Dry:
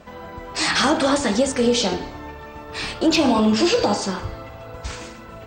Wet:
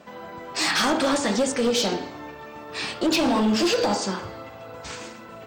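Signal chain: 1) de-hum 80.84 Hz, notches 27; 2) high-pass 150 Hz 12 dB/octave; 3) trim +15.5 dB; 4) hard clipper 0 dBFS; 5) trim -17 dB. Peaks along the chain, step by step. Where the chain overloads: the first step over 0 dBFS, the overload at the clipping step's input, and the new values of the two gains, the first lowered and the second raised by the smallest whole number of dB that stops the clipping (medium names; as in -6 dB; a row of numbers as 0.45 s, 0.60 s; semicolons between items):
-7.5 dBFS, -7.0 dBFS, +8.5 dBFS, 0.0 dBFS, -17.0 dBFS; step 3, 8.5 dB; step 3 +6.5 dB, step 5 -8 dB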